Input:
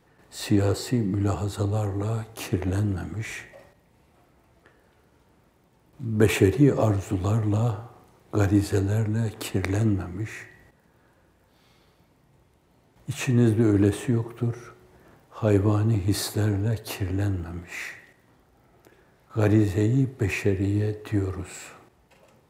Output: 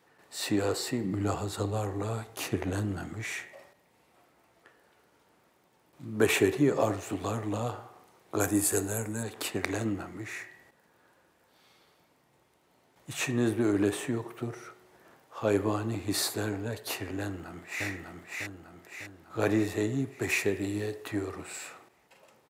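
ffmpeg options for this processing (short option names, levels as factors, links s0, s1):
-filter_complex "[0:a]asettb=1/sr,asplit=3[s0][s1][s2];[s0]atrim=end=1.044[s3];[s1]atrim=start=1.04:end=3.25,asetpts=PTS-STARTPTS,afade=t=in:d=0.004:c=qsin,afade=t=out:st=2.206:d=0.004:c=qsin,equalizer=f=60:w=0.38:g=7[s4];[s2]atrim=start=3.246[s5];[s3][s4]acrossfade=d=0.004:c1=hsin:c2=qsin[s6];[s6][s5]acrossfade=d=0.004:c1=qsin:c2=hsin,asettb=1/sr,asplit=3[s7][s8][s9];[s7]atrim=end=8.404[s10];[s8]atrim=start=8.4:end=9.23,asetpts=PTS-STARTPTS,afade=t=in:d=0.004:c=qsin,afade=t=out:st=0.826:d=0.004:c=qsin,highshelf=f=6200:t=q:w=1.5:g=12.5[s11];[s9]atrim=start=9.226[s12];[s10][s11]acrossfade=d=0.004:c1=hsin:c2=qsin[s13];[s13][s12]acrossfade=d=0.004:c1=qsin:c2=hsin,asplit=2[s14][s15];[s15]afade=t=in:st=17.2:d=0.01,afade=t=out:st=17.86:d=0.01,aecho=0:1:600|1200|1800|2400|3000|3600|4200:0.794328|0.397164|0.198582|0.099291|0.0496455|0.0248228|0.0124114[s16];[s14][s16]amix=inputs=2:normalize=0,asettb=1/sr,asplit=3[s17][s18][s19];[s17]atrim=end=20.224[s20];[s18]atrim=start=20.22:end=21.08,asetpts=PTS-STARTPTS,afade=t=in:d=0.004:c=qsin,afade=t=out:st=0.856:d=0.004:c=qsin,highshelf=f=5000:g=6.5[s21];[s19]atrim=start=21.076[s22];[s20][s21]acrossfade=d=0.004:c1=hsin:c2=qsin[s23];[s23][s22]acrossfade=d=0.004:c1=qsin:c2=hsin,highpass=f=500:p=1"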